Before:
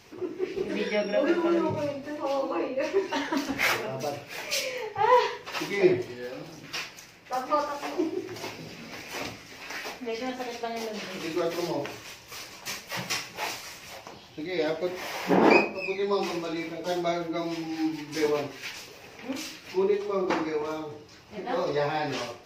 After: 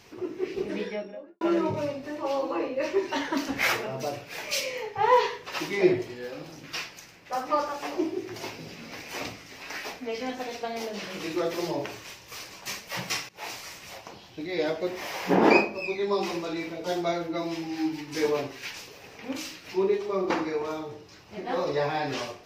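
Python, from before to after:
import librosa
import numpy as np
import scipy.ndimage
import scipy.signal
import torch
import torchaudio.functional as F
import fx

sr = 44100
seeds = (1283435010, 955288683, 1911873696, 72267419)

y = fx.studio_fade_out(x, sr, start_s=0.54, length_s=0.87)
y = fx.edit(y, sr, fx.fade_in_from(start_s=13.29, length_s=0.33, floor_db=-19.5), tone=tone)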